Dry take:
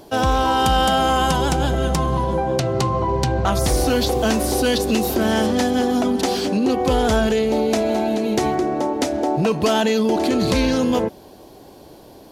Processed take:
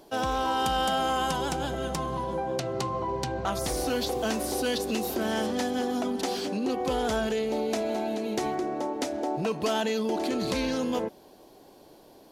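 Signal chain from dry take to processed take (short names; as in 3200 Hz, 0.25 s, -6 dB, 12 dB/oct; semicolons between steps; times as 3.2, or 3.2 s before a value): bell 74 Hz -9 dB 2.1 oct; gain -8.5 dB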